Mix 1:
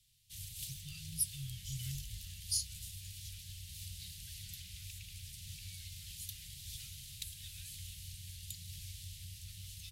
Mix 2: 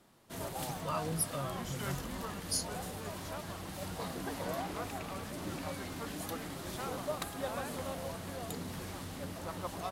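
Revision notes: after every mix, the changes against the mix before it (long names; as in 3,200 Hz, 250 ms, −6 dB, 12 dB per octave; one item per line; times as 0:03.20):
speech: add high-pass filter 190 Hz
master: remove inverse Chebyshev band-stop filter 290–1,100 Hz, stop band 60 dB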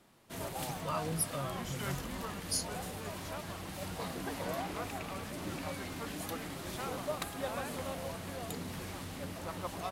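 background: add parametric band 2,400 Hz +3 dB 0.68 octaves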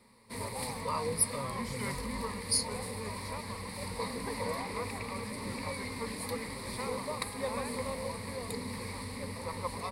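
master: add EQ curve with evenly spaced ripples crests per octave 0.93, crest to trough 15 dB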